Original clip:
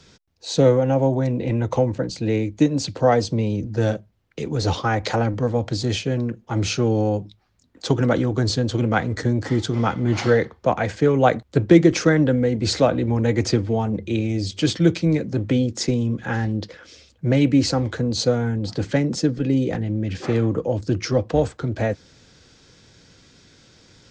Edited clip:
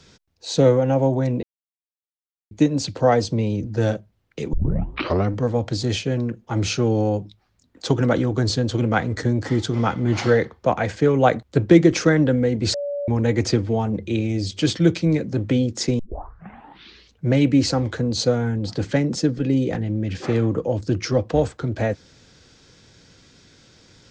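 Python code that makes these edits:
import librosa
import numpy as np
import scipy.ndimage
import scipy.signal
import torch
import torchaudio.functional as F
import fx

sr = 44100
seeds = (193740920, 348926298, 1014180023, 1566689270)

y = fx.edit(x, sr, fx.silence(start_s=1.43, length_s=1.08),
    fx.tape_start(start_s=4.53, length_s=0.8),
    fx.bleep(start_s=12.74, length_s=0.34, hz=573.0, db=-23.5),
    fx.tape_start(start_s=15.99, length_s=1.26), tone=tone)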